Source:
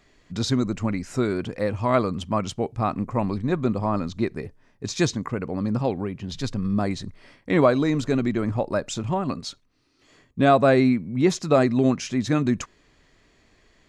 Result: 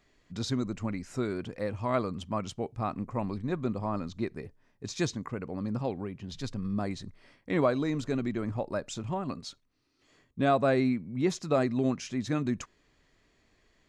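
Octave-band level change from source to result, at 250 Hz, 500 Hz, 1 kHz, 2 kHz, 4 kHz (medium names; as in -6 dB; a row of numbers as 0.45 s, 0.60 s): -8.0 dB, -8.0 dB, -8.0 dB, -8.0 dB, -8.0 dB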